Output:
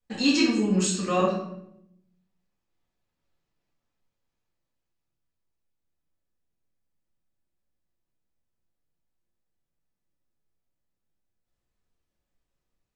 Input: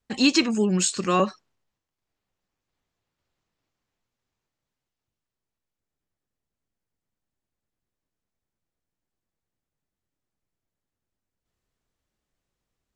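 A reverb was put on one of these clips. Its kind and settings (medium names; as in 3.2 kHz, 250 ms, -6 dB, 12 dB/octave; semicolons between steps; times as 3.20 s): simulated room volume 180 m³, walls mixed, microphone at 1.9 m; trim -9 dB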